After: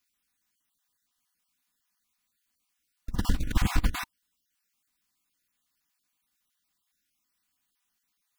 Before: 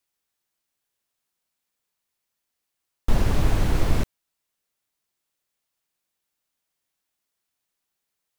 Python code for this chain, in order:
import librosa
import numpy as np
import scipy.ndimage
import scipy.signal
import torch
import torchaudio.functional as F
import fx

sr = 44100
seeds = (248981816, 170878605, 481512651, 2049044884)

y = fx.spec_dropout(x, sr, seeds[0], share_pct=27)
y = fx.band_shelf(y, sr, hz=520.0, db=-10.5, octaves=1.1)
y = fx.notch(y, sr, hz=910.0, q=13.0)
y = y + 0.36 * np.pad(y, (int(4.1 * sr / 1000.0), 0))[:len(y)]
y = fx.over_compress(y, sr, threshold_db=-21.0, ratio=-0.5)
y = F.gain(torch.from_numpy(y), -2.5).numpy()